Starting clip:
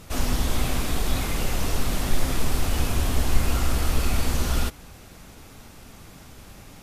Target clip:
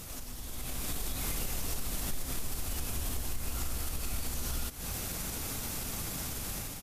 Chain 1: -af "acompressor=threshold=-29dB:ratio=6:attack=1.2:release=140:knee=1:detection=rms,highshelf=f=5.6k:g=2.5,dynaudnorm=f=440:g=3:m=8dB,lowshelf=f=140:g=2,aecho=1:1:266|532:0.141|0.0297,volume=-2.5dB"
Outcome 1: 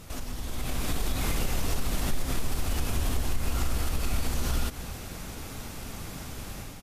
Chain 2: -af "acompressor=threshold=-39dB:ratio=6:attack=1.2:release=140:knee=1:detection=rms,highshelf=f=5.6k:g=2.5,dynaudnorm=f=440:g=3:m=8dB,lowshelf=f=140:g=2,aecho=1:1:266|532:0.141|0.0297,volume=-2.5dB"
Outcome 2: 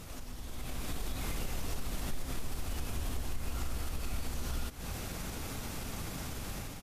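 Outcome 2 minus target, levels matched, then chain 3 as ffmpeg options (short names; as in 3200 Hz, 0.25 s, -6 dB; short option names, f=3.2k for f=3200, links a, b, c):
8000 Hz band -4.0 dB
-af "acompressor=threshold=-39dB:ratio=6:attack=1.2:release=140:knee=1:detection=rms,highshelf=f=5.6k:g=14,dynaudnorm=f=440:g=3:m=8dB,lowshelf=f=140:g=2,aecho=1:1:266|532:0.141|0.0297,volume=-2.5dB"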